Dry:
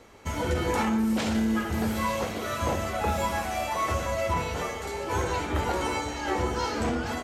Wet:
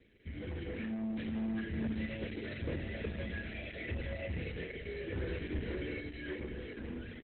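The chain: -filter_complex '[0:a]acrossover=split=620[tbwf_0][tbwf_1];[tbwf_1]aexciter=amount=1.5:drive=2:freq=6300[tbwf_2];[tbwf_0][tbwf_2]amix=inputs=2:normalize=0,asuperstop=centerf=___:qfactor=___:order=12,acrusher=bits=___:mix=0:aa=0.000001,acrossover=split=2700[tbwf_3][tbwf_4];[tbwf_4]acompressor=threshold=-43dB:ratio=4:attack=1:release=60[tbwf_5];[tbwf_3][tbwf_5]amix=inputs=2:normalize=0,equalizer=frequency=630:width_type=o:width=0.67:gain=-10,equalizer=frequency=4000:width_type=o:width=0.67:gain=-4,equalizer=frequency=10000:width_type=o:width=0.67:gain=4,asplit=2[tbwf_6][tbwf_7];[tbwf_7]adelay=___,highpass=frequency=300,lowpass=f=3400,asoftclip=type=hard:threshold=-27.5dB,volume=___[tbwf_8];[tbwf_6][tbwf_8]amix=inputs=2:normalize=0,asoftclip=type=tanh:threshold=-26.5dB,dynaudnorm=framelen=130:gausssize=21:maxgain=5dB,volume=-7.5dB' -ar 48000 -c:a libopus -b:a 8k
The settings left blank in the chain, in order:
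1000, 1.1, 10, 250, -26dB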